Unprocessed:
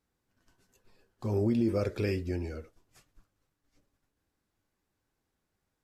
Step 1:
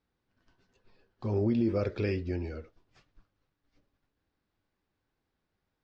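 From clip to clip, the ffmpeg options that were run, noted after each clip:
-af "lowpass=f=4.9k:w=0.5412,lowpass=f=4.9k:w=1.3066"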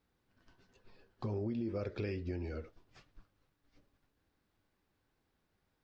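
-af "acompressor=threshold=-39dB:ratio=4,volume=2.5dB"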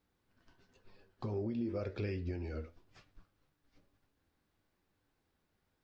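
-af "flanger=delay=9.8:depth=3.8:regen=76:speed=1:shape=triangular,volume=4dB"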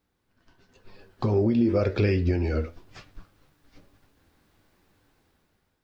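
-af "dynaudnorm=f=350:g=5:m=11.5dB,volume=3.5dB"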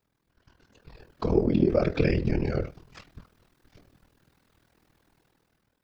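-af "afftfilt=real='hypot(re,im)*cos(2*PI*random(0))':imag='hypot(re,im)*sin(2*PI*random(1))':win_size=512:overlap=0.75,aeval=exprs='val(0)*sin(2*PI*20*n/s)':c=same,volume=8dB"

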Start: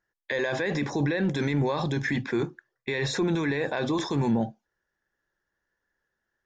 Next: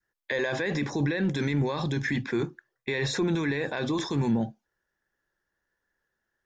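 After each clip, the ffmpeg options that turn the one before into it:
-af "adynamicequalizer=threshold=0.00891:dfrequency=690:dqfactor=1:tfrequency=690:tqfactor=1:attack=5:release=100:ratio=0.375:range=2.5:mode=cutabove:tftype=bell"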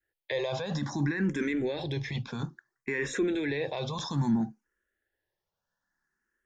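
-filter_complex "[0:a]asplit=2[a][b];[b]afreqshift=0.6[c];[a][c]amix=inputs=2:normalize=1"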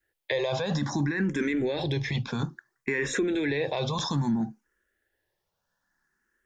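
-af "acompressor=threshold=-30dB:ratio=4,volume=6dB"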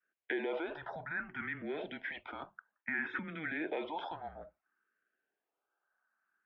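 -af "highpass=f=520:t=q:w=0.5412,highpass=f=520:t=q:w=1.307,lowpass=f=2.9k:t=q:w=0.5176,lowpass=f=2.9k:t=q:w=0.7071,lowpass=f=2.9k:t=q:w=1.932,afreqshift=-160,volume=-5dB"

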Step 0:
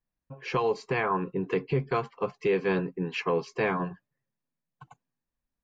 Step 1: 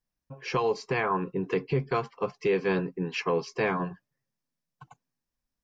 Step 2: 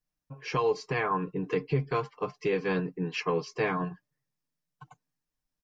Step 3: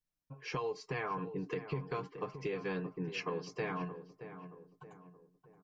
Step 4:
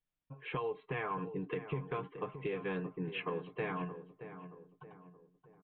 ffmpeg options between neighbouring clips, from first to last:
-af "equalizer=f=5.4k:w=3.1:g=7.5"
-af "aecho=1:1:6.6:0.51,volume=-2.5dB"
-filter_complex "[0:a]acompressor=threshold=-28dB:ratio=6,asplit=2[a][b];[b]adelay=624,lowpass=f=1.4k:p=1,volume=-10.5dB,asplit=2[c][d];[d]adelay=624,lowpass=f=1.4k:p=1,volume=0.45,asplit=2[e][f];[f]adelay=624,lowpass=f=1.4k:p=1,volume=0.45,asplit=2[g][h];[h]adelay=624,lowpass=f=1.4k:p=1,volume=0.45,asplit=2[i][j];[j]adelay=624,lowpass=f=1.4k:p=1,volume=0.45[k];[c][e][g][i][k]amix=inputs=5:normalize=0[l];[a][l]amix=inputs=2:normalize=0,volume=-5.5dB"
-af "aresample=8000,aresample=44100"

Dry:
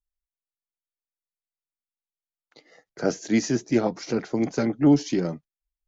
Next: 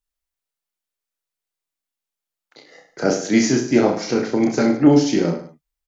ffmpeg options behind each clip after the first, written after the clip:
-filter_complex "[0:a]lowshelf=f=180:g=-5.5,asplit=2[a][b];[b]aecho=0:1:30|64.5|104.2|149.8|202.3:0.631|0.398|0.251|0.158|0.1[c];[a][c]amix=inputs=2:normalize=0,volume=6dB"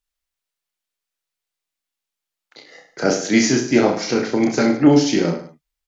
-af "equalizer=f=3.1k:t=o:w=2.6:g=4.5"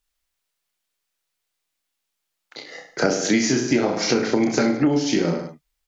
-af "acompressor=threshold=-21dB:ratio=12,volume=5.5dB"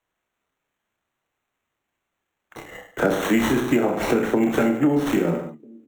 -filter_complex "[0:a]highpass=100,acrossover=split=190|350|2200[a][b][c][d];[b]aecho=1:1:1053:0.119[e];[d]acrusher=samples=9:mix=1:aa=0.000001[f];[a][e][c][f]amix=inputs=4:normalize=0"

